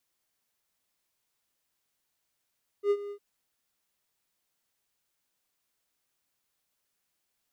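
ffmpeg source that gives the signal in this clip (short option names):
-f lavfi -i "aevalsrc='0.126*(1-4*abs(mod(407*t+0.25,1)-0.5))':d=0.355:s=44100,afade=t=in:d=0.076,afade=t=out:st=0.076:d=0.057:silence=0.168,afade=t=out:st=0.28:d=0.075"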